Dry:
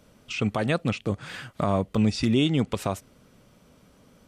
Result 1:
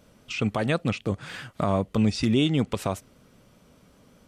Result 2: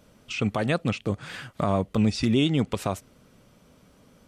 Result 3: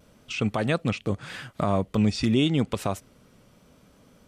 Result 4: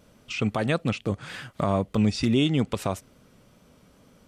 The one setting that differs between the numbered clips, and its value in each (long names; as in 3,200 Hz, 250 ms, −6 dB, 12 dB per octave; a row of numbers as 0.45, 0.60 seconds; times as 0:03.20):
pitch vibrato, speed: 5.1, 9.8, 0.83, 2.3 Hertz